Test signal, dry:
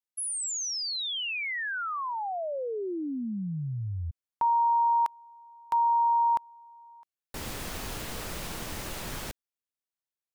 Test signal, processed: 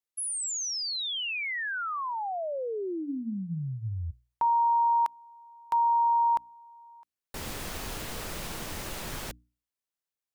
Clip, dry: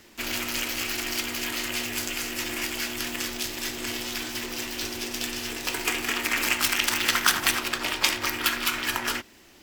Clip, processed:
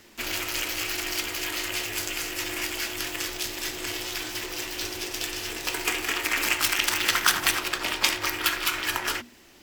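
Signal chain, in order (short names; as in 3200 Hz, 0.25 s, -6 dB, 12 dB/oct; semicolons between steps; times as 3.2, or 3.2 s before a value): notches 60/120/180/240/300 Hz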